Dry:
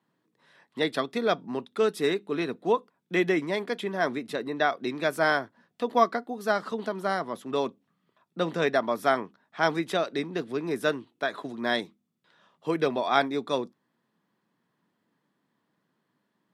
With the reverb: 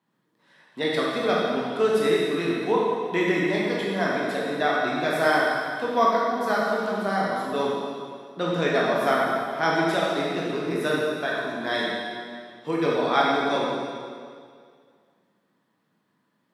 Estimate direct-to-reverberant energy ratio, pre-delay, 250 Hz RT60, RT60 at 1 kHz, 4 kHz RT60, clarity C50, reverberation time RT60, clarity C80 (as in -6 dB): -5.0 dB, 8 ms, 2.1 s, 2.0 s, 2.0 s, -2.0 dB, 2.1 s, 0.0 dB